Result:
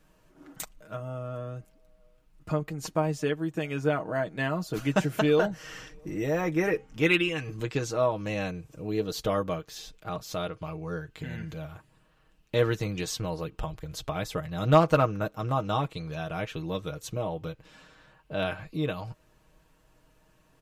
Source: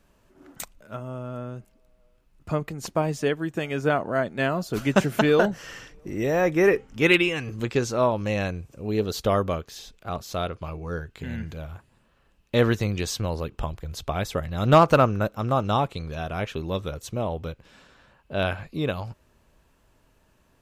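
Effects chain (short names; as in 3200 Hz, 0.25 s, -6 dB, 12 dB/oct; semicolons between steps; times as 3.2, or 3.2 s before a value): comb 6.4 ms; in parallel at -1 dB: compressor, threshold -33 dBFS, peak gain reduction 23.5 dB; on the sum: gain -7.5 dB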